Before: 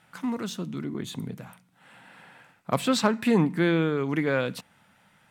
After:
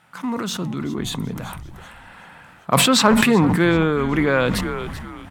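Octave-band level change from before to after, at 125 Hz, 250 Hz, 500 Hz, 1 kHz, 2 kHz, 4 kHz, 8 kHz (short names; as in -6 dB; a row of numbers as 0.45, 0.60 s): +7.5, +7.0, +6.5, +10.0, +9.5, +12.5, +14.0 dB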